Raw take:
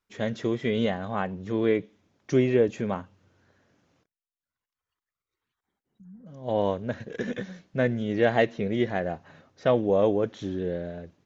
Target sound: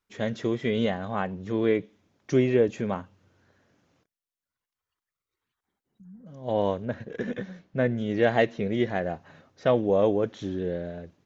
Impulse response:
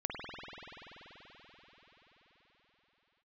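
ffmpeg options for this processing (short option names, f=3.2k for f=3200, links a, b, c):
-filter_complex "[0:a]asettb=1/sr,asplit=3[a][b][c];[a]atrim=end=6.854[d];[b]atrim=start=6.85:end=7.98,asetpts=PTS-STARTPTS,afade=t=in:d=0.004:c=qsin,afade=t=out:st=1.126:d=0.004:c=qsin,highshelf=f=3.9k:g=-10.5[e];[c]atrim=start=7.976[f];[d][e]acrossfade=d=0.004:c1=hsin:c2=qsin[g];[g][f]acrossfade=d=0.004:c1=qsin:c2=hsin"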